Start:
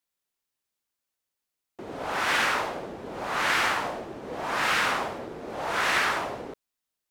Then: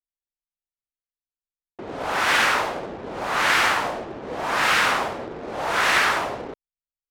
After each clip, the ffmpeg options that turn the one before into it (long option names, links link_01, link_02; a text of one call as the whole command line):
ffmpeg -i in.wav -af "anlmdn=0.0158,equalizer=frequency=210:width=0.49:gain=-2,volume=5.5dB" out.wav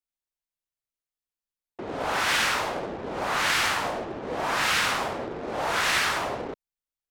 ffmpeg -i in.wav -filter_complex "[0:a]acrossover=split=190|3000[link_01][link_02][link_03];[link_02]acompressor=threshold=-24dB:ratio=6[link_04];[link_01][link_04][link_03]amix=inputs=3:normalize=0" out.wav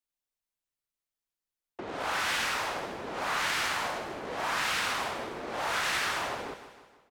ffmpeg -i in.wav -filter_complex "[0:a]acrossover=split=210|920[link_01][link_02][link_03];[link_01]acompressor=threshold=-52dB:ratio=4[link_04];[link_02]acompressor=threshold=-40dB:ratio=4[link_05];[link_03]acompressor=threshold=-29dB:ratio=4[link_06];[link_04][link_05][link_06]amix=inputs=3:normalize=0,aecho=1:1:156|312|468|624|780:0.237|0.123|0.0641|0.0333|0.0173" out.wav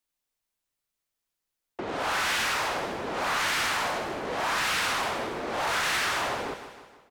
ffmpeg -i in.wav -af "asoftclip=type=tanh:threshold=-28dB,volume=6dB" out.wav